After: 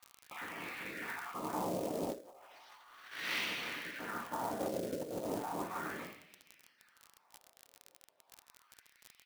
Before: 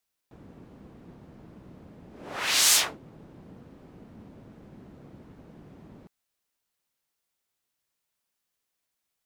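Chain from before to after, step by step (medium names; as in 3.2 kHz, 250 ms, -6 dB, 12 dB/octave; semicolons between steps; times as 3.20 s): random holes in the spectrogram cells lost 33%; Savitzky-Golay filter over 15 samples; on a send: frequency-shifting echo 94 ms, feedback 56%, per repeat -120 Hz, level -23 dB; on the sum: two-slope reverb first 0.68 s, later 2.2 s, from -21 dB, DRR -1 dB; wah-wah 0.35 Hz 530–2300 Hz, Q 3.1; crackle 36 per s -65 dBFS; in parallel at -10.5 dB: one-sided clip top -46 dBFS, bottom -29 dBFS; on the sum: short-mantissa float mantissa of 2-bit; peak limiter -38.5 dBFS, peak gain reduction 14.5 dB; treble shelf 3.5 kHz +7 dB; compressor with a negative ratio -57 dBFS, ratio -0.5; trim +17 dB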